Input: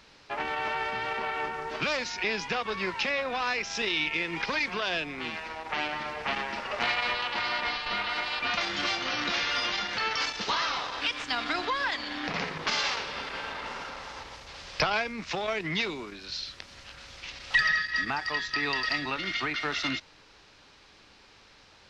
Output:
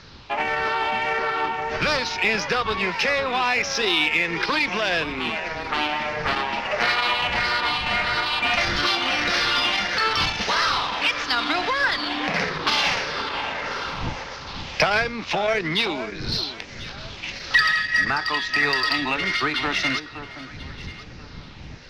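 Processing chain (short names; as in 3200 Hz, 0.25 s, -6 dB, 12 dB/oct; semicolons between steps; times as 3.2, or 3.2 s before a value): moving spectral ripple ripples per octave 0.57, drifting -1.6 Hz, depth 6 dB; wind noise 130 Hz -46 dBFS; steep low-pass 6400 Hz; low shelf 150 Hz -4.5 dB; in parallel at -9 dB: soft clip -30.5 dBFS, distortion -8 dB; on the sum: echo with dull and thin repeats by turns 0.52 s, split 1500 Hz, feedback 50%, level -10.5 dB; gain +5.5 dB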